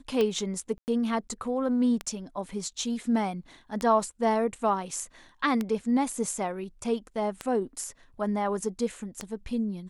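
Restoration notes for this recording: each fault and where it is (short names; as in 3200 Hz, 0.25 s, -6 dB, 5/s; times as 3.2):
tick 33 1/3 rpm -15 dBFS
0.78–0.88 gap 99 ms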